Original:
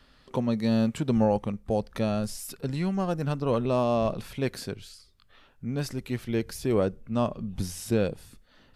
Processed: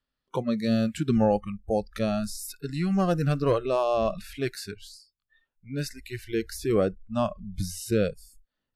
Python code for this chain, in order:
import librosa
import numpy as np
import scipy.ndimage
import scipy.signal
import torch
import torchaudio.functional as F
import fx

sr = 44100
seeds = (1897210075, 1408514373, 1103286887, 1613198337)

y = fx.leveller(x, sr, passes=1, at=(2.9, 3.53))
y = fx.noise_reduce_blind(y, sr, reduce_db=28)
y = y * librosa.db_to_amplitude(1.5)